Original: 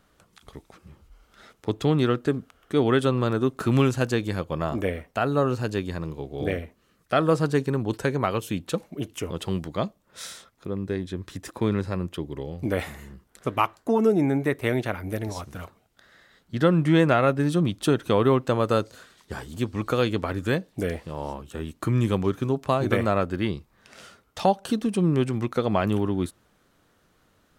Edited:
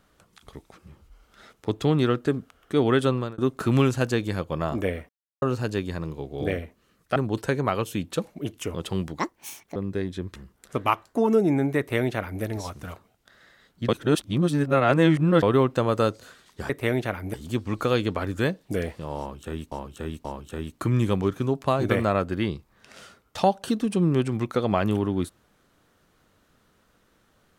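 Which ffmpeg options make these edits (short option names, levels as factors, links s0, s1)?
-filter_complex "[0:a]asplit=14[s0][s1][s2][s3][s4][s5][s6][s7][s8][s9][s10][s11][s12][s13];[s0]atrim=end=3.38,asetpts=PTS-STARTPTS,afade=t=out:st=3.11:d=0.27[s14];[s1]atrim=start=3.38:end=5.09,asetpts=PTS-STARTPTS,afade=t=in:d=0.004:c=hsin,afade=t=out:st=1.706:d=0.004:c=hsin[s15];[s2]atrim=start=5.09:end=5.42,asetpts=PTS-STARTPTS,volume=0[s16];[s3]atrim=start=5.42:end=7.162,asetpts=PTS-STARTPTS,afade=t=in:d=0.004:c=hsin[s17];[s4]atrim=start=7.718:end=9.754[s18];[s5]atrim=start=9.75:end=10.7,asetpts=PTS-STARTPTS,asetrate=74088,aresample=44100[s19];[s6]atrim=start=10.696:end=11.302[s20];[s7]atrim=start=13.068:end=16.602[s21];[s8]atrim=start=16.598:end=18.142,asetpts=PTS-STARTPTS,areverse[s22];[s9]atrim=start=18.138:end=19.412[s23];[s10]atrim=start=14.498:end=15.142[s24];[s11]atrim=start=19.408:end=21.792[s25];[s12]atrim=start=21.258:end=21.792[s26];[s13]atrim=start=21.258[s27];[s14][s15][s16][s17]concat=n=4:v=0:a=1[s28];[s28][s18]acrossfade=d=0.004:c1=hsin:c2=hsin[s29];[s29][s19]acrossfade=d=0.004:c1=hsin:c2=hsin[s30];[s30][s20]acrossfade=d=0.004:c1=hsin:c2=hsin[s31];[s31][s21]acrossfade=d=0.004:c1=hsin:c2=hsin[s32];[s32][s22]acrossfade=d=0.004:c1=hsin:c2=hsin[s33];[s33][s23]acrossfade=d=0.004:c1=hsin:c2=hsin[s34];[s34][s24]acrossfade=d=0.004:c1=hsin:c2=hsin[s35];[s35][s25]acrossfade=d=0.004:c1=hsin:c2=hsin[s36];[s36][s26]acrossfade=d=0.004:c1=hsin:c2=hsin[s37];[s37][s27]acrossfade=d=0.004:c1=hsin:c2=hsin"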